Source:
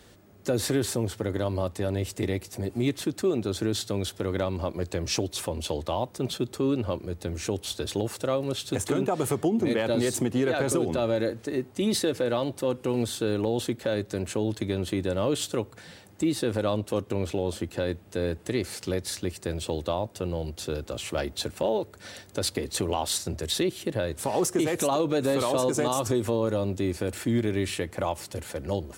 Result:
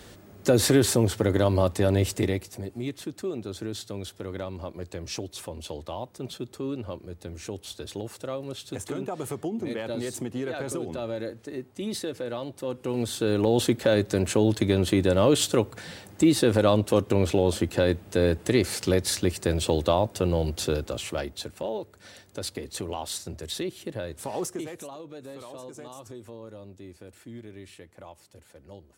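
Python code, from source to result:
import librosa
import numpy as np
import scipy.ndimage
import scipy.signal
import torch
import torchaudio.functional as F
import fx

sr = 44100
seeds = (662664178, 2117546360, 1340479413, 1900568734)

y = fx.gain(x, sr, db=fx.line((2.09, 6.0), (2.75, -6.5), (12.53, -6.5), (13.62, 6.0), (20.64, 6.0), (21.47, -5.5), (24.43, -5.5), (24.94, -17.0)))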